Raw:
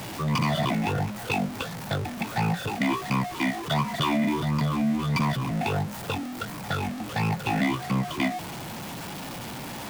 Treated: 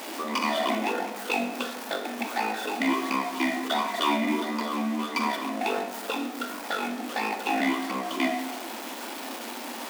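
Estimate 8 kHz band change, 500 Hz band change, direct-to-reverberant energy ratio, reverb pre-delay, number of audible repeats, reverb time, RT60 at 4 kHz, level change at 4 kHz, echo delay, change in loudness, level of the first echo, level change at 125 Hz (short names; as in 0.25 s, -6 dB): +1.0 dB, +2.0 dB, 4.5 dB, 23 ms, none, 0.95 s, 0.65 s, +1.0 dB, none, -1.0 dB, none, under -20 dB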